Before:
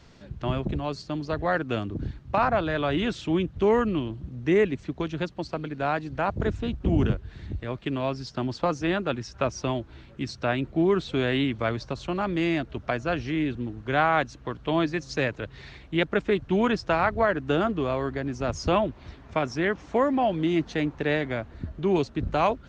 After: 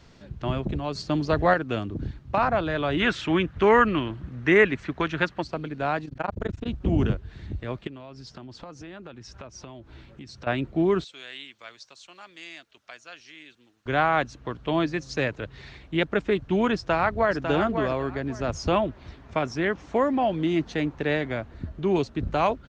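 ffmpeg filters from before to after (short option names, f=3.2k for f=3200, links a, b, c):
-filter_complex "[0:a]asettb=1/sr,asplit=3[a][b][c];[a]atrim=end=0.954[d];[b]atrim=start=0.95:end=1.54,asetpts=PTS-STARTPTS,afade=t=in:d=0.004:c=qsin,afade=t=out:st=0.586:d=0.004:c=qsin,acontrast=46[e];[c]atrim=start=1.536[f];[d][e]acrossfade=d=0.004:c1=hsin:c2=qsin[g];[g][f]acrossfade=d=0.004:c1=qsin:c2=hsin,asplit=3[h][i][j];[h]afade=t=out:st=2.99:d=0.02[k];[i]equalizer=f=1.6k:t=o:w=1.8:g=13,afade=t=in:st=2.99:d=0.02,afade=t=out:st=5.42:d=0.02[l];[j]afade=t=in:st=5.42:d=0.02[m];[k][l][m]amix=inputs=3:normalize=0,asplit=3[n][o][p];[n]afade=t=out:st=6.05:d=0.02[q];[o]tremolo=f=24:d=1,afade=t=in:st=6.05:d=0.02,afade=t=out:st=6.66:d=0.02[r];[p]afade=t=in:st=6.66:d=0.02[s];[q][r][s]amix=inputs=3:normalize=0,asettb=1/sr,asplit=3[t][u][v];[t]atrim=end=7.874[w];[u]atrim=start=7.87:end=10.47,asetpts=PTS-STARTPTS,afade=t=in:d=0.004:c=qsin,afade=t=out:st=2.596:d=0.004:c=qsin,acompressor=threshold=-39dB:ratio=6:attack=3.2:release=140:knee=1:detection=peak[x];[v]atrim=start=10.466[y];[w][x]acrossfade=d=0.004:c1=hsin:c2=qsin[z];[z][y]acrossfade=d=0.004:c1=qsin:c2=hsin,asettb=1/sr,asplit=3[aa][ab][ac];[aa]atrim=end=11.044[ad];[ab]atrim=start=11.04:end=13.86,asetpts=PTS-STARTPTS,afade=t=in:d=0.004:c=qsin,afade=t=out:st=2.816:d=0.004:c=qsin,aderivative[ae];[ac]atrim=start=13.856[af];[ad][ae]acrossfade=d=0.004:c1=hsin:c2=qsin[ag];[ag][af]acrossfade=d=0.004:c1=qsin:c2=hsin,asplit=2[ah][ai];[ai]afade=t=in:st=16.75:d=0.01,afade=t=out:st=17.37:d=0.01,aecho=0:1:550|1100|1650:0.446684|0.0893367|0.0178673[aj];[ah][aj]amix=inputs=2:normalize=0"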